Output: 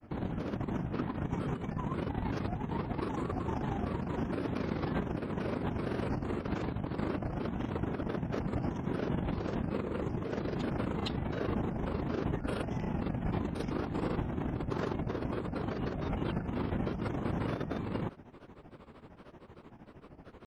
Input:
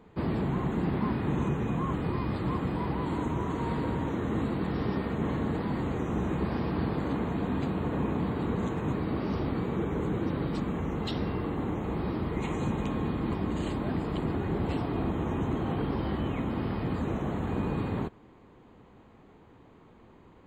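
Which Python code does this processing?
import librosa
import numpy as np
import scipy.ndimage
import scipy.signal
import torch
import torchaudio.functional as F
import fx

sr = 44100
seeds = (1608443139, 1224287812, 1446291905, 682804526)

y = fx.granulator(x, sr, seeds[0], grain_ms=100.0, per_s=13.0, spray_ms=100.0, spread_st=7)
y = fx.over_compress(y, sr, threshold_db=-35.0, ratio=-0.5)
y = y * 10.0 ** (2.0 / 20.0)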